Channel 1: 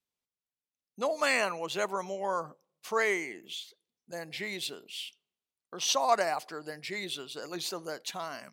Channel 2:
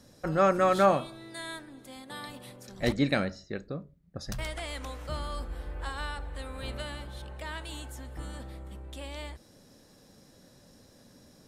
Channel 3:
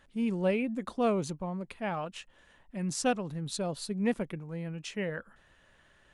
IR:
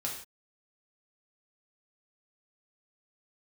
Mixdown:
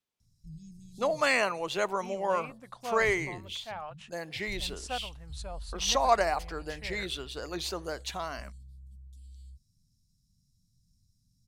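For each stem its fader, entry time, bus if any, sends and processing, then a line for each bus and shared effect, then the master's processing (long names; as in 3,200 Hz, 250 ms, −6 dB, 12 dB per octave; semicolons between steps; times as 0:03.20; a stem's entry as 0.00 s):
+2.0 dB, 0.00 s, no send, no processing
−11.5 dB, 0.20 s, no send, inverse Chebyshev band-stop filter 590–1,400 Hz, stop band 80 dB; low-shelf EQ 75 Hz +11 dB
−6.0 dB, 1.85 s, no send, low shelf with overshoot 510 Hz −10.5 dB, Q 1.5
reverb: not used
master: high-shelf EQ 7,500 Hz −6.5 dB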